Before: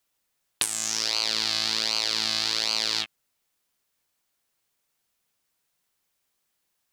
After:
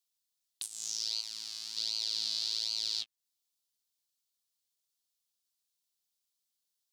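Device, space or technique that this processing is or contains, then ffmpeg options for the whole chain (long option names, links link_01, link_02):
over-bright horn tweeter: -filter_complex "[0:a]agate=range=-22dB:threshold=-24dB:ratio=16:detection=peak,highshelf=frequency=2800:width_type=q:width=1.5:gain=11,alimiter=limit=-23.5dB:level=0:latency=1:release=301,asettb=1/sr,asplit=3[link_01][link_02][link_03];[link_01]atrim=end=1.214[link_04];[link_02]atrim=start=1.21:end=1.77,asetpts=PTS-STARTPTS,afade=type=in:duration=0.004:curve=qsin,afade=type=out:start_time=0.556:duration=0.004:curve=qsin,equalizer=frequency=125:width_type=o:width=1:gain=-11,equalizer=frequency=500:width_type=o:width=1:gain=-12,equalizer=frequency=4000:width_type=o:width=1:gain=-10[link_05];[link_03]atrim=start=1.766[link_06];[link_04][link_05]acrossfade=duration=0.004:curve1=hsin:curve2=qsin[link_07];[link_07][link_06]acrossfade=duration=0.004:curve1=qsin:curve2=hsin,volume=3dB"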